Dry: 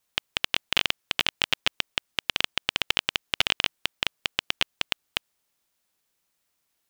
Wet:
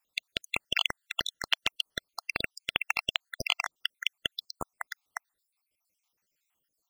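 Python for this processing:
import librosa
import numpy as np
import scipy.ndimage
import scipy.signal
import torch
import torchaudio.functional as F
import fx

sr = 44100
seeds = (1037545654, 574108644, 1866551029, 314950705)

y = fx.spec_dropout(x, sr, seeds[0], share_pct=67)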